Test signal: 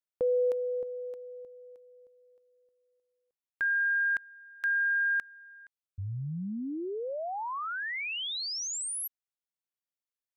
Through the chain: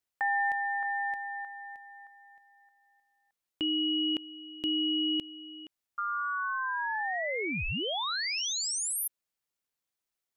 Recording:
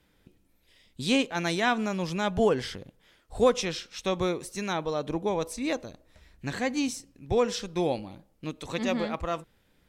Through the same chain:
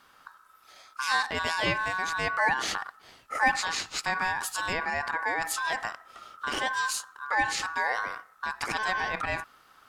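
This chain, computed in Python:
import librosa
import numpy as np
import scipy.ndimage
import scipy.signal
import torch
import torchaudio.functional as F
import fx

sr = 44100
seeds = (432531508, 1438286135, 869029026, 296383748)

p1 = fx.over_compress(x, sr, threshold_db=-38.0, ratio=-1.0)
p2 = x + (p1 * 10.0 ** (0.0 / 20.0))
y = p2 * np.sin(2.0 * np.pi * 1300.0 * np.arange(len(p2)) / sr)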